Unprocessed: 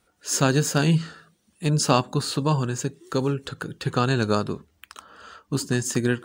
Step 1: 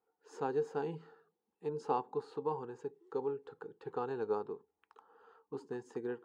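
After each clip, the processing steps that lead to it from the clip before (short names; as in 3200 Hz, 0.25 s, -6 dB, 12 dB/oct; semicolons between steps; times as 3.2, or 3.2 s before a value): double band-pass 610 Hz, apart 0.86 oct; gain -4.5 dB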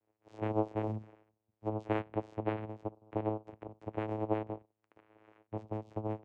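vocoder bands 4, saw 108 Hz; gain +2.5 dB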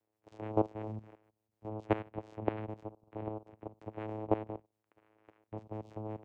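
level quantiser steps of 15 dB; gain +5 dB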